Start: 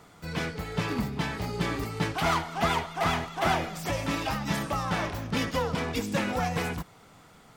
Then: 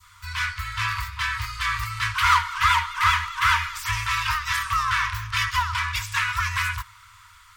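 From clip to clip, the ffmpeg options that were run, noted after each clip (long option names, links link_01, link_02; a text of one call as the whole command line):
ffmpeg -i in.wav -af "adynamicequalizer=threshold=0.0126:dfrequency=1600:dqfactor=0.76:tfrequency=1600:tqfactor=0.76:attack=5:release=100:ratio=0.375:range=2.5:mode=boostabove:tftype=bell,afftfilt=real='re*(1-between(b*sr/4096,110,920))':imag='im*(1-between(b*sr/4096,110,920))':win_size=4096:overlap=0.75,volume=6dB" out.wav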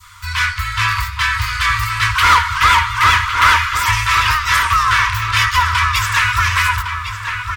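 ffmpeg -i in.wav -filter_complex "[0:a]acontrast=84,asoftclip=type=tanh:threshold=-6dB,asplit=2[link_01][link_02];[link_02]adelay=1108,lowpass=frequency=3000:poles=1,volume=-6.5dB,asplit=2[link_03][link_04];[link_04]adelay=1108,lowpass=frequency=3000:poles=1,volume=0.43,asplit=2[link_05][link_06];[link_06]adelay=1108,lowpass=frequency=3000:poles=1,volume=0.43,asplit=2[link_07][link_08];[link_08]adelay=1108,lowpass=frequency=3000:poles=1,volume=0.43,asplit=2[link_09][link_10];[link_10]adelay=1108,lowpass=frequency=3000:poles=1,volume=0.43[link_11];[link_01][link_03][link_05][link_07][link_09][link_11]amix=inputs=6:normalize=0,volume=3dB" out.wav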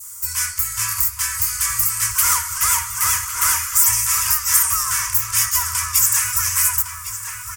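ffmpeg -i in.wav -af "aexciter=amount=15.7:drive=9.3:freq=6000,volume=-13.5dB" out.wav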